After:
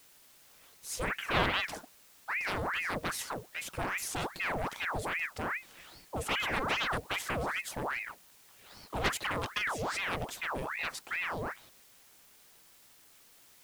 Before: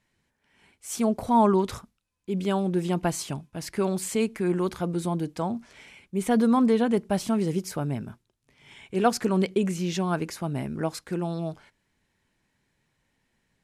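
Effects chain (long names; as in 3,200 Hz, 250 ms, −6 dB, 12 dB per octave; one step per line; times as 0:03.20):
harmonic generator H 7 −6 dB, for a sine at −7.5 dBFS
background noise white −48 dBFS
ring modulator whose carrier an LFO sweeps 1,300 Hz, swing 80%, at 2.5 Hz
level −9 dB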